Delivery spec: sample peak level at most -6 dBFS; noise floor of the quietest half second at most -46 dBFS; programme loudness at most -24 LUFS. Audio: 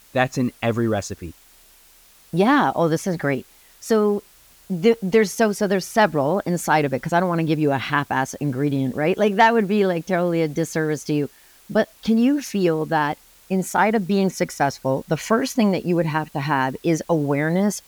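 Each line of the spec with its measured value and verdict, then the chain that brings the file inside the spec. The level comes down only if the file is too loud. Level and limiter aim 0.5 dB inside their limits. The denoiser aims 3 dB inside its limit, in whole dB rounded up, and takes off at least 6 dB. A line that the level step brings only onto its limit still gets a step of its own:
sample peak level -4.5 dBFS: fail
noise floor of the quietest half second -52 dBFS: OK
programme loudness -21.0 LUFS: fail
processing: gain -3.5 dB

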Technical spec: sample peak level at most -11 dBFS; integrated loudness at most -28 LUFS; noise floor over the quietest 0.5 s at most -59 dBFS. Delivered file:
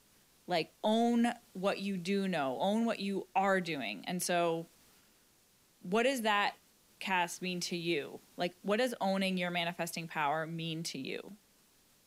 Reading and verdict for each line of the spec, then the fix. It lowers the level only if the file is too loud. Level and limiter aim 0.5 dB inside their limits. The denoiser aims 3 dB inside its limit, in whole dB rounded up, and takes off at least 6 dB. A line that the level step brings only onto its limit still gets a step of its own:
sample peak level -18.0 dBFS: OK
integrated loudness -34.0 LUFS: OK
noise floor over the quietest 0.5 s -68 dBFS: OK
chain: none

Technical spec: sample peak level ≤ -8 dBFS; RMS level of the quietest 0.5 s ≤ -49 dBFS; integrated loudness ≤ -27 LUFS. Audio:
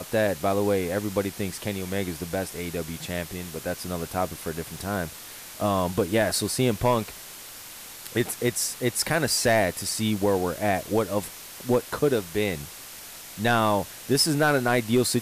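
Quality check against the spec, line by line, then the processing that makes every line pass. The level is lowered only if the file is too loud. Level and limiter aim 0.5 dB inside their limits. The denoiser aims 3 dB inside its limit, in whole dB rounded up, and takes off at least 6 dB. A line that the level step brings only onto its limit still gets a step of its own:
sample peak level -11.5 dBFS: OK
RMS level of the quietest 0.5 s -42 dBFS: fail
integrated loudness -26.0 LUFS: fail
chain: denoiser 9 dB, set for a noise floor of -42 dBFS; gain -1.5 dB

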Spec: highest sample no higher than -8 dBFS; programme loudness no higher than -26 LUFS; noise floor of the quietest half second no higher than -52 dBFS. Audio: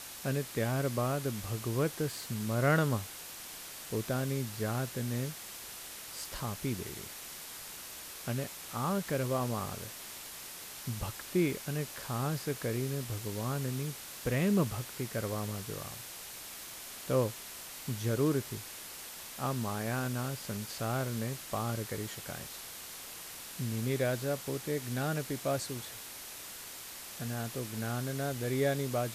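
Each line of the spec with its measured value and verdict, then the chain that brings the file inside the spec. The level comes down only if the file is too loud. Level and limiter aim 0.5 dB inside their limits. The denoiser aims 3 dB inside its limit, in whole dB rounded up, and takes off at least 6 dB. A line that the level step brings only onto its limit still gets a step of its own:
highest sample -16.5 dBFS: OK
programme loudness -35.5 LUFS: OK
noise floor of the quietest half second -46 dBFS: fail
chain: denoiser 9 dB, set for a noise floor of -46 dBFS

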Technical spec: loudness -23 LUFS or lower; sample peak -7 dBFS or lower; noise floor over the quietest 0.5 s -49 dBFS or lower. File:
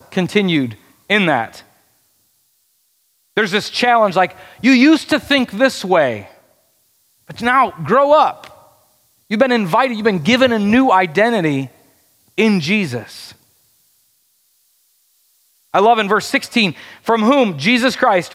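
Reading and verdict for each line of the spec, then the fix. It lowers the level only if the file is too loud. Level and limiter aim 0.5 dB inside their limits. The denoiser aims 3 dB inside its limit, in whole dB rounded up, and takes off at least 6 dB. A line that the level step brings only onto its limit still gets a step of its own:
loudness -15.0 LUFS: fail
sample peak -1.5 dBFS: fail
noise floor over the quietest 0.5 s -62 dBFS: OK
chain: gain -8.5 dB

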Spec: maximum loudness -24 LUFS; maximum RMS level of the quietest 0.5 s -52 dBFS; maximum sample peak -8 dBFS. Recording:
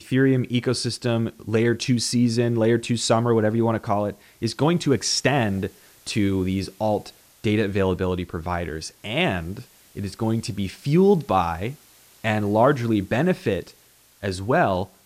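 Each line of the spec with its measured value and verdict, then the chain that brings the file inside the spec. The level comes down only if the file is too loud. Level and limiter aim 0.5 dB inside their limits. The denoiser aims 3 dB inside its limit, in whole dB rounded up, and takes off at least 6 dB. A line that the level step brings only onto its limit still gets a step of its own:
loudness -23.0 LUFS: fail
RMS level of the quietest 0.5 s -56 dBFS: OK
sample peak -6.0 dBFS: fail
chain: gain -1.5 dB; limiter -8.5 dBFS

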